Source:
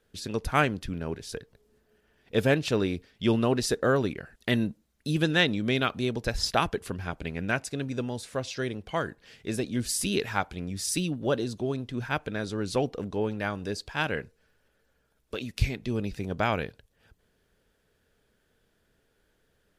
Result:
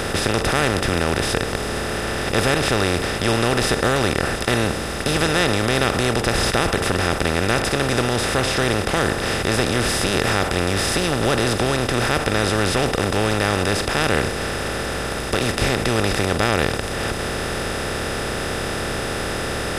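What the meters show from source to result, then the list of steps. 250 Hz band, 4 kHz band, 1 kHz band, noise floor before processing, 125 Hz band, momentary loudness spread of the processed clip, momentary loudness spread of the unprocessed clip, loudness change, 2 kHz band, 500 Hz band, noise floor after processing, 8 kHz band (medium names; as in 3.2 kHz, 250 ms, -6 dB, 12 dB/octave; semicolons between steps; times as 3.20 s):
+7.0 dB, +12.0 dB, +11.0 dB, -71 dBFS, +9.5 dB, 6 LU, 10 LU, +9.0 dB, +11.5 dB, +9.5 dB, -26 dBFS, +11.5 dB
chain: spectral levelling over time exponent 0.2; in parallel at -1 dB: peak limiter -6.5 dBFS, peak gain reduction 9.5 dB; on the sum: trim -7 dB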